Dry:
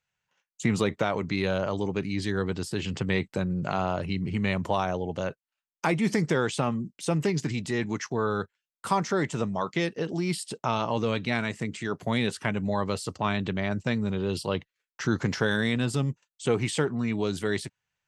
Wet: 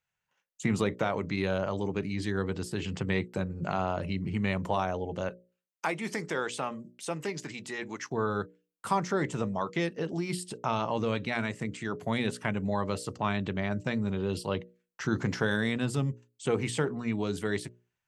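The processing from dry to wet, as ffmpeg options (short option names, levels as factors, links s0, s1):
-filter_complex "[0:a]asettb=1/sr,asplit=3[s0][s1][s2];[s0]atrim=end=5.294[s3];[s1]atrim=start=5.29:end=8.06,asetpts=PTS-STARTPTS,afade=t=in:d=0.004:c=qsin,afade=t=out:st=2.766:d=0.004:c=qsin,highpass=f=570:p=1[s4];[s2]atrim=start=8.056[s5];[s3][s4]acrossfade=d=0.004:c1=hsin:c2=qsin[s6];[s6][s5]acrossfade=d=0.004:c1=qsin:c2=hsin,equalizer=f=4500:t=o:w=1.5:g=-3.5,bandreject=f=60:t=h:w=6,bandreject=f=120:t=h:w=6,bandreject=f=180:t=h:w=6,bandreject=f=240:t=h:w=6,bandreject=f=300:t=h:w=6,bandreject=f=360:t=h:w=6,bandreject=f=420:t=h:w=6,bandreject=f=480:t=h:w=6,bandreject=f=540:t=h:w=6,bandreject=f=600:t=h:w=6,volume=0.794"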